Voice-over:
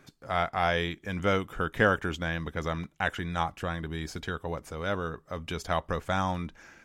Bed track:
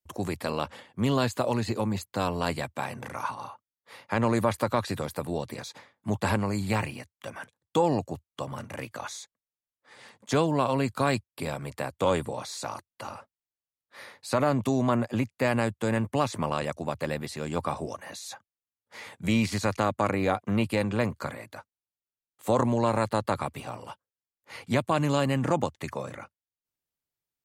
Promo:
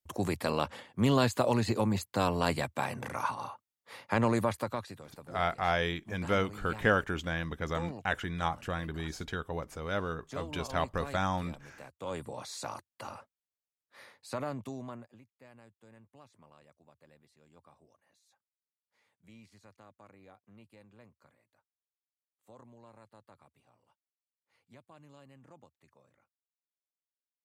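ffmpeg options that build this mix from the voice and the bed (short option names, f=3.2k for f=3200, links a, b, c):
-filter_complex "[0:a]adelay=5050,volume=-2.5dB[a];[1:a]volume=12.5dB,afade=t=out:st=4.04:d=0.94:silence=0.141254,afade=t=in:st=12:d=0.55:silence=0.223872,afade=t=out:st=13.31:d=1.88:silence=0.0473151[b];[a][b]amix=inputs=2:normalize=0"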